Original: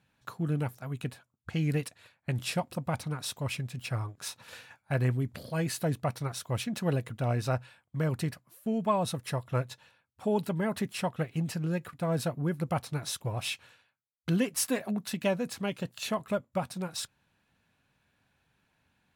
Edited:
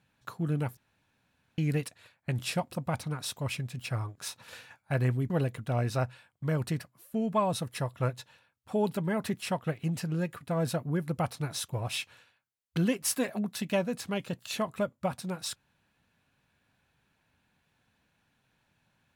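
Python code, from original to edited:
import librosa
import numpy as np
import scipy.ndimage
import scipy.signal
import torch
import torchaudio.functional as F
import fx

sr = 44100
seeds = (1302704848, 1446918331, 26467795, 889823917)

y = fx.edit(x, sr, fx.room_tone_fill(start_s=0.77, length_s=0.81),
    fx.cut(start_s=5.3, length_s=1.52), tone=tone)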